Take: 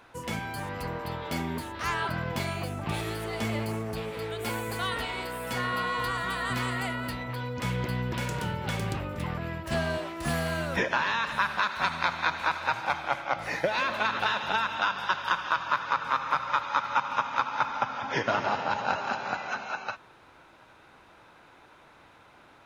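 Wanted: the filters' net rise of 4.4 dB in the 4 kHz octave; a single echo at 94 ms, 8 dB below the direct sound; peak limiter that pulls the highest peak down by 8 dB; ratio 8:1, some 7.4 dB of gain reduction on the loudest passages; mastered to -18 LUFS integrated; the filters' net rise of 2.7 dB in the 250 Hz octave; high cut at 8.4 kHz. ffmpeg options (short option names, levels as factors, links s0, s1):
-af "lowpass=8400,equalizer=f=250:t=o:g=3.5,equalizer=f=4000:t=o:g=5.5,acompressor=threshold=0.0398:ratio=8,alimiter=limit=0.0841:level=0:latency=1,aecho=1:1:94:0.398,volume=5.62"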